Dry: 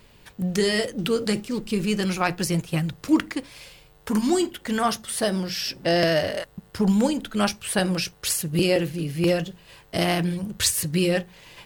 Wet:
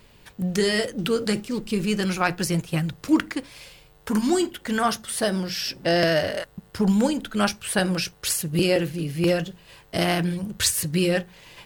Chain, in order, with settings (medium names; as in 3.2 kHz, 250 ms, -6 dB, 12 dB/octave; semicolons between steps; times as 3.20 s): dynamic bell 1.5 kHz, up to +4 dB, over -45 dBFS, Q 4.5